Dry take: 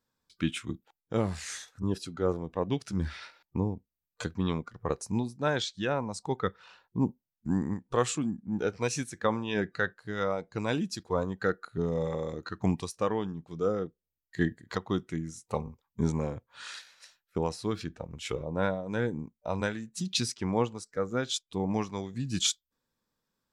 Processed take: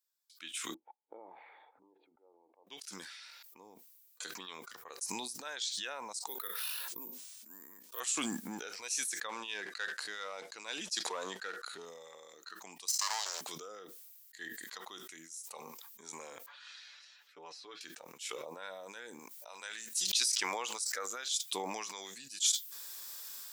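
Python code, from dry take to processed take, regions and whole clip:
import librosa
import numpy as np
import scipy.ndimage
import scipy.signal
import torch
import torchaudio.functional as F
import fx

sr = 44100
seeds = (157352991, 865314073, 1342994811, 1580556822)

y = fx.chain(x, sr, fx.formant_cascade(vowel='u'),
    fx.low_shelf_res(hz=380.0, db=-11.5, q=1.5), at=(0.74, 2.67))
y = fx.chain(y, sr, fx.cabinet(low_hz=200.0, low_slope=12, high_hz=9500.0, hz=(810.0, 1400.0, 2000.0), db=(-10, -4, -4)),
    fx.resample_bad(factor=3, down='none', up='hold'),
    fx.sustainer(db_per_s=41.0), at=(6.27, 8.0))
y = fx.chain(y, sr, fx.leveller(passes=1),
    fx.bandpass_edges(low_hz=110.0, high_hz=7400.0), at=(9.29, 11.85))
y = fx.chain(y, sr, fx.lower_of_two(delay_ms=0.97),
    fx.highpass(hz=590.0, slope=24),
    fx.band_shelf(hz=5700.0, db=13.5, octaves=1.1), at=(12.88, 13.41))
y = fx.chain(y, sr, fx.air_absorb(metres=210.0),
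    fx.comb(ms=6.9, depth=0.76), at=(16.46, 17.81))
y = fx.chain(y, sr, fx.low_shelf(hz=350.0, db=-10.5),
    fx.pre_swell(db_per_s=38.0), at=(19.19, 21.43))
y = scipy.signal.sosfilt(scipy.signal.butter(2, 330.0, 'highpass', fs=sr, output='sos'), y)
y = np.diff(y, prepend=0.0)
y = fx.sustainer(y, sr, db_per_s=21.0)
y = y * librosa.db_to_amplitude(1.0)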